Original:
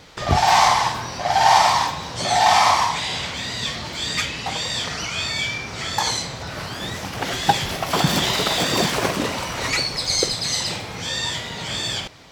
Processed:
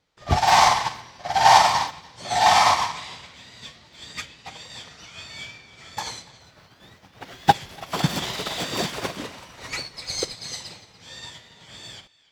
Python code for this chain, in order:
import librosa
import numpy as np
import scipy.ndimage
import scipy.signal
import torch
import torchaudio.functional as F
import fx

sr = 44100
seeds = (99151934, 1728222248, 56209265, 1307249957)

p1 = fx.median_filter(x, sr, points=5, at=(6.41, 7.54))
p2 = 10.0 ** (-16.5 / 20.0) * np.tanh(p1 / 10.0 ** (-16.5 / 20.0))
p3 = p1 + (p2 * librosa.db_to_amplitude(-10.5))
p4 = fx.echo_banded(p3, sr, ms=290, feedback_pct=42, hz=2700.0, wet_db=-7.0)
p5 = fx.upward_expand(p4, sr, threshold_db=-31.0, expansion=2.5)
y = p5 * librosa.db_to_amplitude(1.0)